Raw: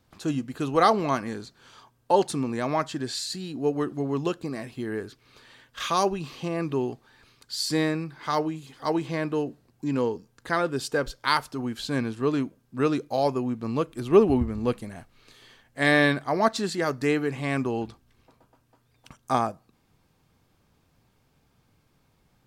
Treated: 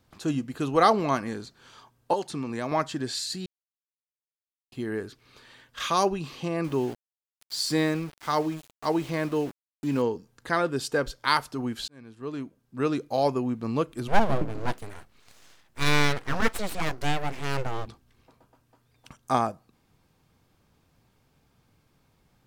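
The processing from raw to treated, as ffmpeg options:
-filter_complex "[0:a]asettb=1/sr,asplit=3[s0][s1][s2];[s0]atrim=end=2.134[s3];[s1]atrim=start=2.13:end=2.72,asetpts=PTS-STARTPTS,afade=t=in:d=0.004:c=qsin,afade=t=out:st=0.586:d=0.004:c=qsin,acrossover=split=930|5900[s4][s5][s6];[s4]acompressor=threshold=0.0355:ratio=4[s7];[s5]acompressor=threshold=0.0158:ratio=4[s8];[s6]acompressor=threshold=0.00355:ratio=4[s9];[s7][s8][s9]amix=inputs=3:normalize=0[s10];[s2]atrim=start=2.716[s11];[s3][s10]acrossfade=d=0.004:c1=hsin:c2=qsin[s12];[s12][s11]acrossfade=d=0.004:c1=qsin:c2=hsin,asettb=1/sr,asplit=3[s13][s14][s15];[s13]atrim=end=6.644[s16];[s14]atrim=start=6.64:end=10.02,asetpts=PTS-STARTPTS,afade=t=in:d=0.004:c=qsin,afade=t=out:st=3.376:d=0.004:c=qsin,aeval=exprs='val(0)*gte(abs(val(0)),0.0106)':c=same[s17];[s15]atrim=start=10.016[s18];[s16][s17]acrossfade=d=0.004:c1=hsin:c2=qsin[s19];[s19][s18]acrossfade=d=0.004:c1=qsin:c2=hsin,asplit=3[s20][s21][s22];[s20]afade=t=out:st=14.07:d=0.02[s23];[s21]aeval=exprs='abs(val(0))':c=same,afade=t=in:st=14.07:d=0.02,afade=t=out:st=17.85:d=0.02[s24];[s22]afade=t=in:st=17.85:d=0.02[s25];[s23][s24][s25]amix=inputs=3:normalize=0,asplit=4[s26][s27][s28][s29];[s26]atrim=end=3.46,asetpts=PTS-STARTPTS,afade=t=out:st=3.456:d=0.004:c=hsin[s30];[s27]atrim=start=3.46:end=4.72,asetpts=PTS-STARTPTS,volume=0[s31];[s28]atrim=start=4.72:end=11.88,asetpts=PTS-STARTPTS,afade=t=in:d=0.004:c=hsin,afade=t=out:st=7.156:d=0.004:c=hsin[s32];[s29]atrim=start=11.88,asetpts=PTS-STARTPTS,afade=t=in:d=1.3[s33];[s30][s31][s32][s33]concat=n=4:v=0:a=1"

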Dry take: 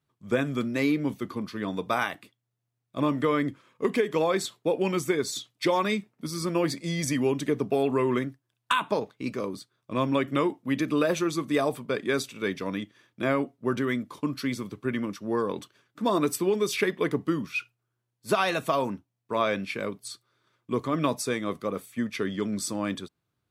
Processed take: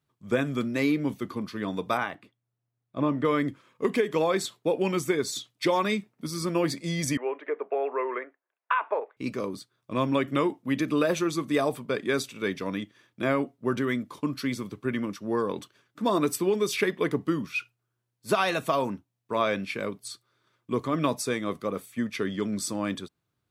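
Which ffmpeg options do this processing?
-filter_complex "[0:a]asettb=1/sr,asplit=3[s0][s1][s2];[s0]atrim=end=1.974[s3];[s1]atrim=start=1.97:end=3.25,asetpts=PTS-STARTPTS,afade=t=in:d=0.004:c=qsin,afade=t=out:st=1.276:d=0.004:c=qsin,lowpass=f=1700:p=1[s4];[s2]atrim=start=3.246[s5];[s3][s4]acrossfade=d=0.004:c1=hsin:c2=qsin[s6];[s6][s5]acrossfade=d=0.004:c1=qsin:c2=hsin,asettb=1/sr,asplit=3[s7][s8][s9];[s7]atrim=end=7.174[s10];[s8]atrim=start=7.17:end=9.17,asetpts=PTS-STARTPTS,afade=t=in:d=0.004:c=qsin,afade=t=out:st=1.996:d=0.004:c=qsin,asuperpass=centerf=990:order=8:qfactor=0.53[s11];[s9]atrim=start=9.166[s12];[s10][s11]acrossfade=d=0.004:c1=hsin:c2=qsin[s13];[s13][s12]acrossfade=d=0.004:c1=qsin:c2=hsin"

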